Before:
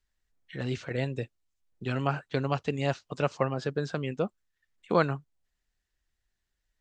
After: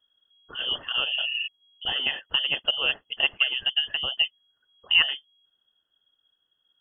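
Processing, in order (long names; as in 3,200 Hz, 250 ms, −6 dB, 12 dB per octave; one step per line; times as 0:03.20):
phaser with its sweep stopped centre 410 Hz, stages 4
healed spectral selection 0:01.08–0:01.44, 360–1,600 Hz before
voice inversion scrambler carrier 3,300 Hz
level +7 dB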